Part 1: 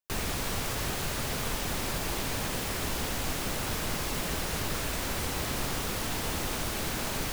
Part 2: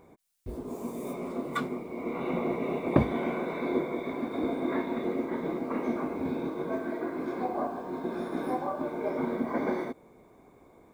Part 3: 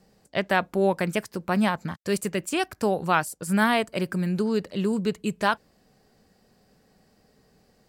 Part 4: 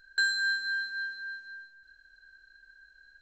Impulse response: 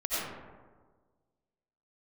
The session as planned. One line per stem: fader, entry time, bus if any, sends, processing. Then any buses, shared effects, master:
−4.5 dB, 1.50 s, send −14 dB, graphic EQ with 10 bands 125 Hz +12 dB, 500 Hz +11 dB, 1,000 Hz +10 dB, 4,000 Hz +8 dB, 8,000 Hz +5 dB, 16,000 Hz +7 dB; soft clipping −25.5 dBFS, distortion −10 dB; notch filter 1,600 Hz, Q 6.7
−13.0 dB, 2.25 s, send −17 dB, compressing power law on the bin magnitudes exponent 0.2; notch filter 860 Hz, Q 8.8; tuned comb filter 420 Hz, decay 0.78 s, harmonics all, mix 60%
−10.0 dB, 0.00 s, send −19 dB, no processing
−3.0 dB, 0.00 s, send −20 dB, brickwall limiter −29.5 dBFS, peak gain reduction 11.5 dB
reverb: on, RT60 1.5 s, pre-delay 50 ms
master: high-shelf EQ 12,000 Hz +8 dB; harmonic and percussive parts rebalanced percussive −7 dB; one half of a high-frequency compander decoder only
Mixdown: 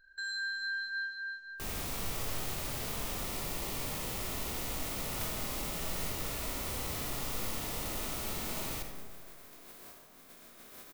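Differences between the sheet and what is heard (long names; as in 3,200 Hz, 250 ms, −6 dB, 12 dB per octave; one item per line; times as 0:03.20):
stem 1: missing graphic EQ with 10 bands 125 Hz +12 dB, 500 Hz +11 dB, 1,000 Hz +10 dB, 4,000 Hz +8 dB, 8,000 Hz +5 dB, 16,000 Hz +7 dB
stem 2: send −17 dB → −11 dB
stem 3: muted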